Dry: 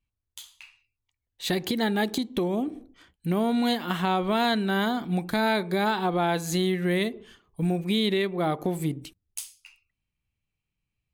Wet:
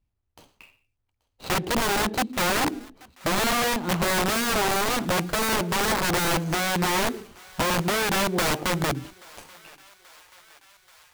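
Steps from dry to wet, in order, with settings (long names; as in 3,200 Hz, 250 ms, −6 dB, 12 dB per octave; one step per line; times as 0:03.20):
running median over 25 samples
wrap-around overflow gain 25 dB
feedback echo with a high-pass in the loop 832 ms, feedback 71%, high-pass 670 Hz, level −23 dB
level +6.5 dB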